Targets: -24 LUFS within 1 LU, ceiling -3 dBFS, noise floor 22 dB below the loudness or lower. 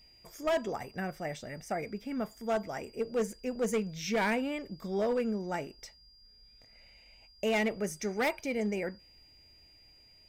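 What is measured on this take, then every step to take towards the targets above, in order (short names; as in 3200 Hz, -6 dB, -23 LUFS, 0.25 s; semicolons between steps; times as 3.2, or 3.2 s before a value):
clipped 1.6%; flat tops at -24.5 dBFS; steady tone 4800 Hz; tone level -58 dBFS; loudness -33.5 LUFS; peak -24.5 dBFS; loudness target -24.0 LUFS
-> clip repair -24.5 dBFS; notch 4800 Hz, Q 30; gain +9.5 dB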